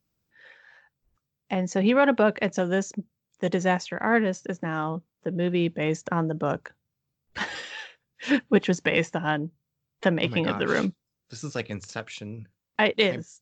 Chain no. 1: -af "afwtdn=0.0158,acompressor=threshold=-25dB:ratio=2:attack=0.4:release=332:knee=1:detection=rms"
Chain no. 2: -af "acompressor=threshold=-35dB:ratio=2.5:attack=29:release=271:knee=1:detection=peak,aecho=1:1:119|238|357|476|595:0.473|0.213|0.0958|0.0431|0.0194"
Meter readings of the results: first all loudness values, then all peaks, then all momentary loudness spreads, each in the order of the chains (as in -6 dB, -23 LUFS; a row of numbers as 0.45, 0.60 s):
-32.0, -33.5 LUFS; -15.5, -12.5 dBFS; 11, 11 LU